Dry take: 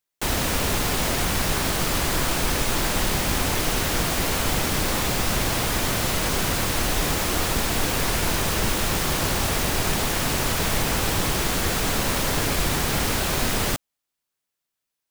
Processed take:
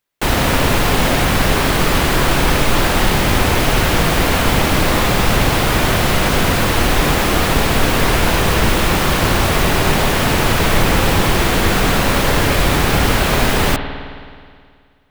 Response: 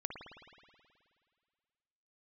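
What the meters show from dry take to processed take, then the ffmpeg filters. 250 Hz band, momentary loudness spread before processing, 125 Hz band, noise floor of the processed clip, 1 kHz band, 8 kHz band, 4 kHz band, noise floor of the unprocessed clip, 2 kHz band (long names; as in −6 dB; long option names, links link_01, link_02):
+10.0 dB, 0 LU, +10.0 dB, −43 dBFS, +10.0 dB, +2.5 dB, +6.5 dB, −83 dBFS, +9.5 dB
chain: -filter_complex "[0:a]asplit=2[link_01][link_02];[1:a]atrim=start_sample=2205,lowpass=4400[link_03];[link_02][link_03]afir=irnorm=-1:irlink=0,volume=2dB[link_04];[link_01][link_04]amix=inputs=2:normalize=0,volume=3.5dB"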